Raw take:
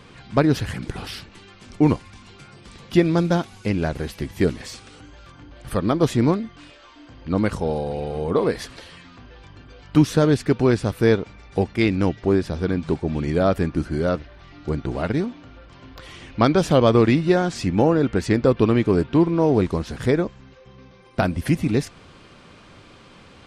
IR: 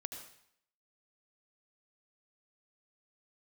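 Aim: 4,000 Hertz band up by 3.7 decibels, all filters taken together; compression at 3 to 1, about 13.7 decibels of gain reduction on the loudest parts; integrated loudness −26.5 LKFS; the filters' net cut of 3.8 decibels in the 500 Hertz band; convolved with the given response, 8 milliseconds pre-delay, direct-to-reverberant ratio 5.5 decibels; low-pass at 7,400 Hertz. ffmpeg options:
-filter_complex "[0:a]lowpass=7400,equalizer=frequency=500:width_type=o:gain=-5,equalizer=frequency=4000:width_type=o:gain=5,acompressor=threshold=-31dB:ratio=3,asplit=2[link_01][link_02];[1:a]atrim=start_sample=2205,adelay=8[link_03];[link_02][link_03]afir=irnorm=-1:irlink=0,volume=-3.5dB[link_04];[link_01][link_04]amix=inputs=2:normalize=0,volume=6.5dB"

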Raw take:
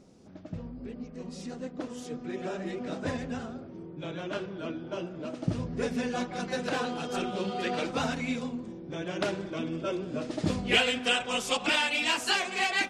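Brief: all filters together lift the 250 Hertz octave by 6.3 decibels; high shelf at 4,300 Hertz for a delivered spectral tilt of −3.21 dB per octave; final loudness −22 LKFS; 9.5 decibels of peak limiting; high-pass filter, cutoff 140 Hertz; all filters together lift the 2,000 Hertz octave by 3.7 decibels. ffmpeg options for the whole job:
ffmpeg -i in.wav -af "highpass=140,equalizer=frequency=250:width_type=o:gain=8,equalizer=frequency=2000:width_type=o:gain=6.5,highshelf=frequency=4300:gain=-6.5,volume=7.5dB,alimiter=limit=-9dB:level=0:latency=1" out.wav

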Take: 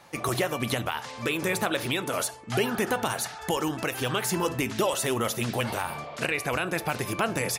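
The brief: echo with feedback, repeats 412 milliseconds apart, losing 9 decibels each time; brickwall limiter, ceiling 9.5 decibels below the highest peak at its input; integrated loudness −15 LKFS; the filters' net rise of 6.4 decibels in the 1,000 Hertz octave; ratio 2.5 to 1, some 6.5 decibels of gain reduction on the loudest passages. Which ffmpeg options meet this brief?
ffmpeg -i in.wav -af "equalizer=frequency=1000:width_type=o:gain=8,acompressor=threshold=-29dB:ratio=2.5,alimiter=limit=-24dB:level=0:latency=1,aecho=1:1:412|824|1236|1648:0.355|0.124|0.0435|0.0152,volume=19dB" out.wav

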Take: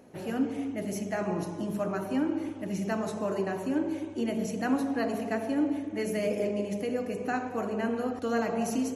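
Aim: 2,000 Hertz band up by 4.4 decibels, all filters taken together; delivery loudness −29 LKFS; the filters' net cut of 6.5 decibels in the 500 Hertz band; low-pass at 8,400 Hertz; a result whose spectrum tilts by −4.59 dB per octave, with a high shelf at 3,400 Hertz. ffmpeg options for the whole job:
ffmpeg -i in.wav -af "lowpass=8400,equalizer=frequency=500:width_type=o:gain=-9,equalizer=frequency=2000:width_type=o:gain=4.5,highshelf=frequency=3400:gain=6.5,volume=4dB" out.wav

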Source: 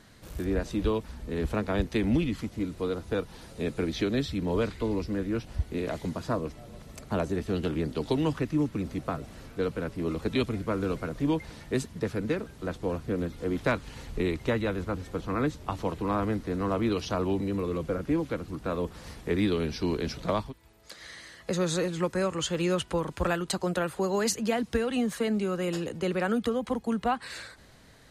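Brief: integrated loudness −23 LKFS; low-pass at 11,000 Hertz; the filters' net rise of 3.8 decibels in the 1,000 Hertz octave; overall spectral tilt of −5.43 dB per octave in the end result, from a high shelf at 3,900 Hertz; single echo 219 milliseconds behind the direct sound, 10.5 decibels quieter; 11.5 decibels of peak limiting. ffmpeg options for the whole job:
ffmpeg -i in.wav -af "lowpass=11000,equalizer=frequency=1000:width_type=o:gain=4.5,highshelf=frequency=3900:gain=5,alimiter=limit=-21.5dB:level=0:latency=1,aecho=1:1:219:0.299,volume=9dB" out.wav

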